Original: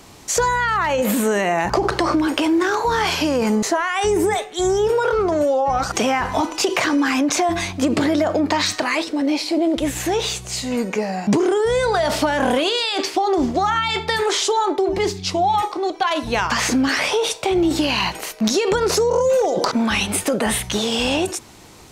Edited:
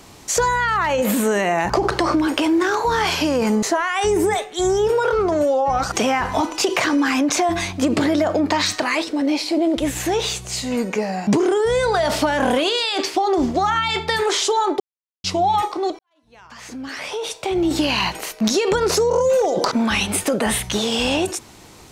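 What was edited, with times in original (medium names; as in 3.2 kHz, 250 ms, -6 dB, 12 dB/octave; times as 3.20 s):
14.80–15.24 s: mute
15.99–17.80 s: fade in quadratic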